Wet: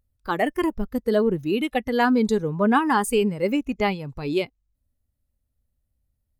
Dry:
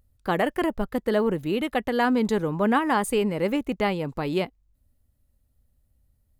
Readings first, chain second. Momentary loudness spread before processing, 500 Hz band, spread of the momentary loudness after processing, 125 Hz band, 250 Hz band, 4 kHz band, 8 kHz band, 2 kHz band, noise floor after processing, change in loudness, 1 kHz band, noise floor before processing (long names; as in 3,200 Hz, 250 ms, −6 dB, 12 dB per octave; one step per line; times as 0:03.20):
6 LU, +1.5 dB, 7 LU, +0.5 dB, +2.5 dB, +1.5 dB, +3.0 dB, +1.5 dB, −77 dBFS, +2.0 dB, +2.0 dB, −69 dBFS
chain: noise reduction from a noise print of the clip's start 11 dB
level +3 dB